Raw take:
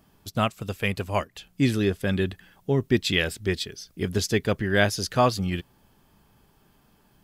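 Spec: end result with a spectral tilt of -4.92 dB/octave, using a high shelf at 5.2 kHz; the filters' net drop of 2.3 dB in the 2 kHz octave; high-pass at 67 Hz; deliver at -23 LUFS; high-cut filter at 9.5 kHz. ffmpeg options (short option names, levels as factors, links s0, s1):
-af "highpass=67,lowpass=9500,equalizer=f=2000:t=o:g=-3.5,highshelf=f=5200:g=4,volume=1.41"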